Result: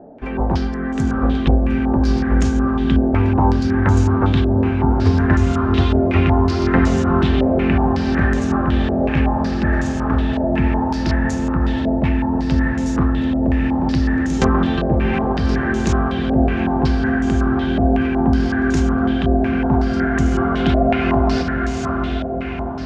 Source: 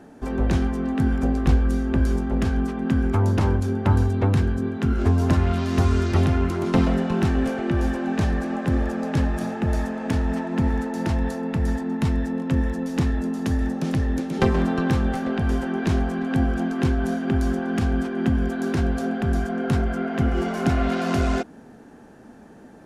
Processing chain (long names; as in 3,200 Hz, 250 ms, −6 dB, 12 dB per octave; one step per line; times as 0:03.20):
feedback delay with all-pass diffusion 735 ms, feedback 62%, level −4.5 dB
low-pass on a step sequencer 5.4 Hz 640–6,800 Hz
level +1.5 dB